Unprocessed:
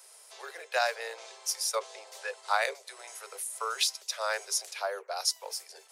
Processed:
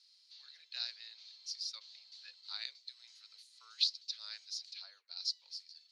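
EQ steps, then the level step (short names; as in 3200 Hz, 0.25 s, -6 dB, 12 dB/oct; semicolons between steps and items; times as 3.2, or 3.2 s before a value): band-pass 4300 Hz, Q 8.1; air absorption 230 m; differentiator; +16.5 dB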